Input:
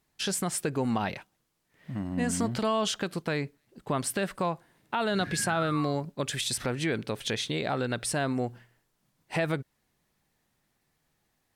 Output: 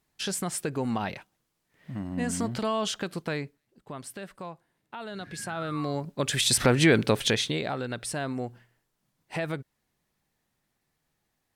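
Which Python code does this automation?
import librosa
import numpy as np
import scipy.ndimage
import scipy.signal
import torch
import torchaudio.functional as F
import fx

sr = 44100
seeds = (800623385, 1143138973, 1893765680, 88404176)

y = fx.gain(x, sr, db=fx.line((3.33, -1.0), (3.84, -10.5), (5.22, -10.5), (6.02, 0.0), (6.63, 9.5), (7.14, 9.5), (7.78, -3.0)))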